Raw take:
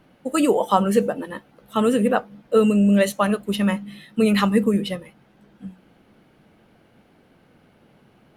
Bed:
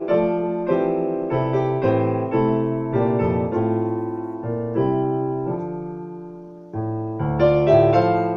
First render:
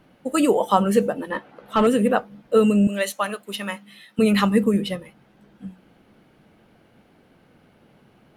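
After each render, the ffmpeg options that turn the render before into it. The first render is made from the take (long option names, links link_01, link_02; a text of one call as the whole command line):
ffmpeg -i in.wav -filter_complex "[0:a]asettb=1/sr,asplit=3[link_01][link_02][link_03];[link_01]atrim=end=1.304[link_04];[link_02]atrim=start=1.3:end=1.87,asetpts=PTS-STARTPTS,afade=type=in:duration=0.004:curve=qsin,afade=type=out:start_time=0.566:duration=0.004:curve=qsin,asplit=2[link_05][link_06];[link_06]highpass=frequency=720:poles=1,volume=18dB,asoftclip=type=tanh:threshold=-7dB[link_07];[link_05][link_07]amix=inputs=2:normalize=0,lowpass=frequency=1300:poles=1,volume=-6dB[link_08];[link_03]atrim=start=1.866[link_09];[link_04][link_08]acrossfade=duration=0.004:curve1=hsin:curve2=qsin[link_10];[link_10][link_09]acrossfade=duration=0.004:curve1=qsin:curve2=hsin,asettb=1/sr,asplit=3[link_11][link_12][link_13];[link_11]atrim=end=2.874[link_14];[link_12]atrim=start=2.87:end=4.19,asetpts=PTS-STARTPTS,afade=type=in:duration=0.004:curve=qsin,afade=type=out:start_time=1.316:duration=0.004:curve=qsin,highpass=frequency=940:poles=1[link_15];[link_13]atrim=start=4.186[link_16];[link_14][link_15]acrossfade=duration=0.004:curve1=hsin:curve2=qsin[link_17];[link_17][link_16]acrossfade=duration=0.004:curve1=qsin:curve2=hsin" out.wav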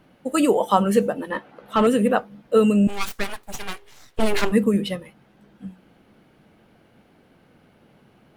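ffmpeg -i in.wav -filter_complex "[0:a]asplit=3[link_01][link_02][link_03];[link_01]afade=type=out:start_time=2.87:duration=0.02[link_04];[link_02]aeval=exprs='abs(val(0))':channel_layout=same,afade=type=in:start_time=2.87:duration=0.02,afade=type=out:start_time=4.51:duration=0.02[link_05];[link_03]afade=type=in:start_time=4.51:duration=0.02[link_06];[link_04][link_05][link_06]amix=inputs=3:normalize=0" out.wav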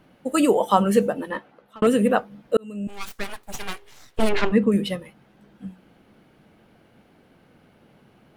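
ffmpeg -i in.wav -filter_complex "[0:a]asettb=1/sr,asplit=3[link_01][link_02][link_03];[link_01]atrim=end=4.294[link_04];[link_02]atrim=start=4.29:end=4.72,asetpts=PTS-STARTPTS,afade=type=in:duration=0.004:curve=qsin,afade=type=out:start_time=0.426:duration=0.004:curve=qsin,lowpass=3800[link_05];[link_03]atrim=start=4.716[link_06];[link_04][link_05]acrossfade=duration=0.004:curve1=hsin:curve2=qsin[link_07];[link_07][link_06]acrossfade=duration=0.004:curve1=qsin:curve2=hsin,asplit=3[link_08][link_09][link_10];[link_08]atrim=end=1.82,asetpts=PTS-STARTPTS,afade=type=out:start_time=1.22:duration=0.6[link_11];[link_09]atrim=start=1.82:end=2.57,asetpts=PTS-STARTPTS,afade=type=in:duration=0.004:curve=hsin,afade=type=out:start_time=0.746:duration=0.004:curve=hsin[link_12];[link_10]atrim=start=2.57,asetpts=PTS-STARTPTS,afade=type=in:duration=1.04[link_13];[link_11][link_12][link_13]concat=n=3:v=0:a=1" out.wav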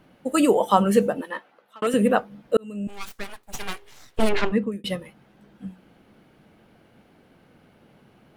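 ffmpeg -i in.wav -filter_complex "[0:a]asettb=1/sr,asplit=3[link_01][link_02][link_03];[link_01]atrim=end=1.214[link_04];[link_02]atrim=start=1.21:end=1.94,asetpts=PTS-STARTPTS,afade=type=in:duration=0.004:curve=qsin,afade=type=out:start_time=0.726:duration=0.004:curve=qsin,highpass=frequency=740:poles=1[link_05];[link_03]atrim=start=1.936[link_06];[link_04][link_05]acrossfade=duration=0.004:curve1=hsin:curve2=qsin[link_07];[link_07][link_06]acrossfade=duration=0.004:curve1=qsin:curve2=hsin,asplit=3[link_08][link_09][link_10];[link_08]atrim=end=3.53,asetpts=PTS-STARTPTS,afade=type=out:start_time=2.8:duration=0.73:silence=0.398107[link_11];[link_09]atrim=start=3.53:end=4.84,asetpts=PTS-STARTPTS,afade=type=in:duration=0.004:curve=hsin:silence=0.398107,afade=type=out:start_time=0.69:duration=0.62:curve=qsin[link_12];[link_10]atrim=start=4.84,asetpts=PTS-STARTPTS,afade=type=in:duration=0.004:curve=hsin[link_13];[link_11][link_12][link_13]concat=n=3:v=0:a=1" out.wav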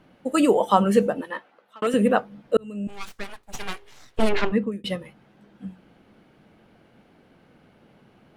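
ffmpeg -i in.wav -af "highshelf=frequency=11000:gain=-10.5,bandreject=frequency=47.97:width_type=h:width=4,bandreject=frequency=95.94:width_type=h:width=4,bandreject=frequency=143.91:width_type=h:width=4" out.wav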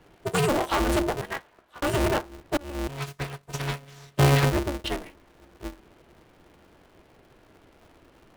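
ffmpeg -i in.wav -filter_complex "[0:a]acrossover=split=110|2200[link_01][link_02][link_03];[link_02]asoftclip=type=tanh:threshold=-20dB[link_04];[link_01][link_04][link_03]amix=inputs=3:normalize=0,aeval=exprs='val(0)*sgn(sin(2*PI*140*n/s))':channel_layout=same" out.wav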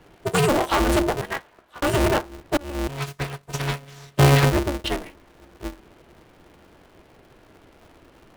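ffmpeg -i in.wav -af "volume=4dB" out.wav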